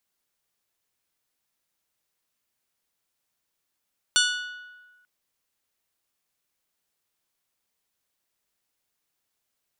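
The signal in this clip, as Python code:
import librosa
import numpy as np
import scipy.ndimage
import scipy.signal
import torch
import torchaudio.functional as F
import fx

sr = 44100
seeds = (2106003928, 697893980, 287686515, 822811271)

y = fx.strike_glass(sr, length_s=0.89, level_db=-21.0, body='bell', hz=1470.0, decay_s=1.36, tilt_db=0.5, modes=7)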